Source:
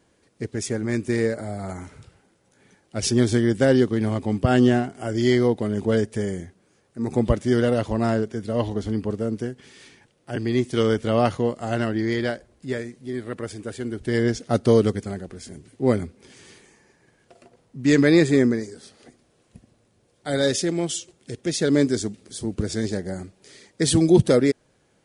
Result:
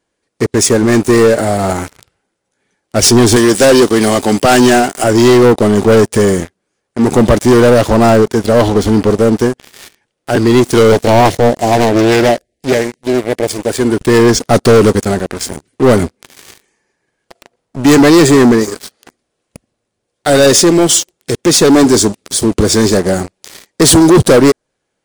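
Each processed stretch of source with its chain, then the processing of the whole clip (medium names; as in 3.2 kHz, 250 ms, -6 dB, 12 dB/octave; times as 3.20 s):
3.36–5.04 s: high-pass 290 Hz 6 dB/octave + treble shelf 2.8 kHz +9.5 dB
10.92–13.70 s: elliptic band-stop 720–1800 Hz + bass shelf 110 Hz -4.5 dB + loudspeaker Doppler distortion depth 0.79 ms
whole clip: peaking EQ 110 Hz -8 dB 2.9 oct; waveshaping leveller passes 5; dynamic bell 2.5 kHz, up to -4 dB, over -29 dBFS, Q 0.81; trim +4.5 dB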